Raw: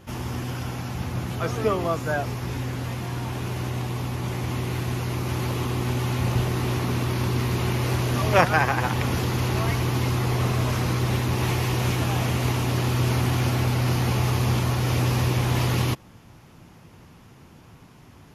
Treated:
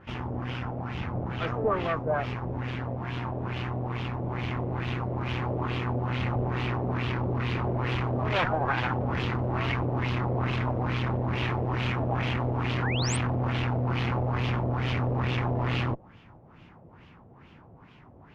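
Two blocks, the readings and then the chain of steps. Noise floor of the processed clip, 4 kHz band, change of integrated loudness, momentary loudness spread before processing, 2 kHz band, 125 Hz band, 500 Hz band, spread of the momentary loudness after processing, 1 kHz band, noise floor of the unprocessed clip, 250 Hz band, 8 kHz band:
-53 dBFS, -5.5 dB, -4.5 dB, 7 LU, -3.5 dB, -5.0 dB, -3.0 dB, 6 LU, -3.0 dB, -50 dBFS, -4.0 dB, -11.0 dB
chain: tube stage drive 24 dB, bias 0.7; LFO low-pass sine 2.3 Hz 590–3100 Hz; painted sound rise, 12.82–13.17, 1300–9300 Hz -34 dBFS

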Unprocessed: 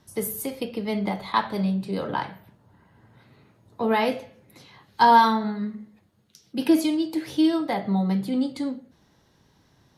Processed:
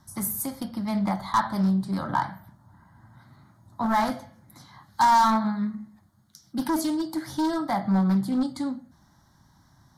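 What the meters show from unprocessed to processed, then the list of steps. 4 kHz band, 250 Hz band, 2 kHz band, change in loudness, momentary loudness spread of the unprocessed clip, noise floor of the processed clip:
-4.5 dB, -1.0 dB, -3.5 dB, -1.5 dB, 13 LU, -61 dBFS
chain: hard clip -19.5 dBFS, distortion -8 dB; fixed phaser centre 1100 Hz, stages 4; Doppler distortion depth 0.16 ms; gain +4.5 dB

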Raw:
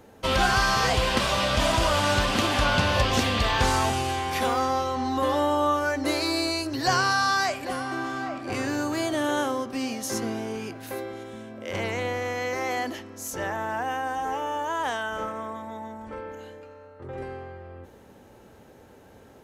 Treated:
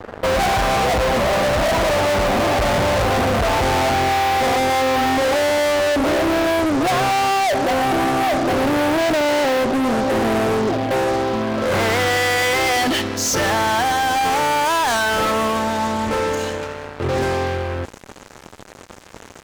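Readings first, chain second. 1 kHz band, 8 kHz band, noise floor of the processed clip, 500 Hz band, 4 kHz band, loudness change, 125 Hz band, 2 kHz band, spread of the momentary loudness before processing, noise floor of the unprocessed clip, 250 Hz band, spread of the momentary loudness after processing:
+8.5 dB, +7.5 dB, -41 dBFS, +10.5 dB, +5.0 dB, +7.5 dB, +5.5 dB, +7.0 dB, 16 LU, -51 dBFS, +8.5 dB, 4 LU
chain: low-pass sweep 690 Hz -> 7100 Hz, 10.88–13.7; fuzz box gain 40 dB, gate -47 dBFS; gain -3.5 dB

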